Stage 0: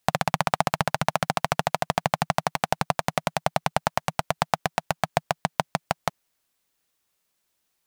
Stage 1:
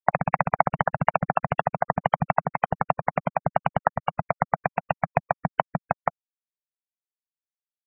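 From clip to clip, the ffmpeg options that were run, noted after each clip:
-filter_complex "[0:a]afftfilt=real='re*gte(hypot(re,im),0.0891)':imag='im*gte(hypot(re,im),0.0891)':win_size=1024:overlap=0.75,acrossover=split=430[a][b];[a]aeval=exprs='val(0)*(1-0.7/2+0.7/2*cos(2*PI*4*n/s))':c=same[c];[b]aeval=exprs='val(0)*(1-0.7/2-0.7/2*cos(2*PI*4*n/s))':c=same[d];[c][d]amix=inputs=2:normalize=0,volume=5dB"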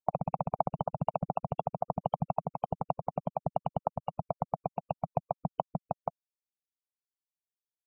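-af "asuperstop=centerf=1800:order=4:qfactor=0.61,volume=-6.5dB"

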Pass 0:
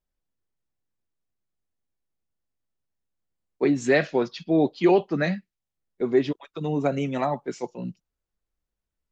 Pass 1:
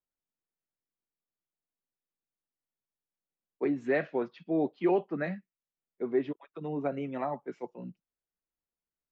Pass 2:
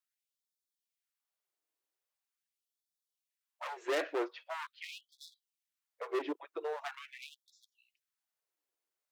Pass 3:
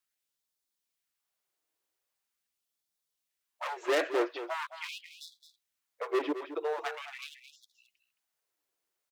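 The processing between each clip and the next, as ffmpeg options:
-filter_complex "[0:a]acrossover=split=150 2700:gain=0.251 1 0.0708[a][b][c];[a][b][c]amix=inputs=3:normalize=0,volume=-7.5dB"
-af "volume=33.5dB,asoftclip=hard,volume=-33.5dB,afftfilt=real='re*gte(b*sr/1024,260*pow(3400/260,0.5+0.5*sin(2*PI*0.43*pts/sr)))':imag='im*gte(b*sr/1024,260*pow(3400/260,0.5+0.5*sin(2*PI*0.43*pts/sr)))':win_size=1024:overlap=0.75,volume=4dB"
-af "aecho=1:1:218:0.266,volume=5dB"

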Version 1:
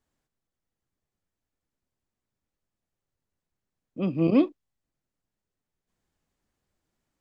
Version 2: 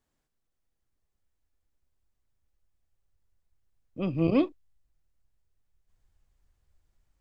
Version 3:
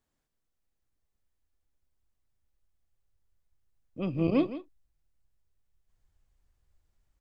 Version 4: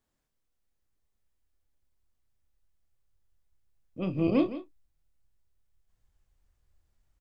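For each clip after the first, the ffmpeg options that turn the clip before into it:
-af "asubboost=boost=10:cutoff=71"
-af "aecho=1:1:164:0.211,volume=-2dB"
-filter_complex "[0:a]asplit=2[a][b];[b]adelay=27,volume=-9dB[c];[a][c]amix=inputs=2:normalize=0"

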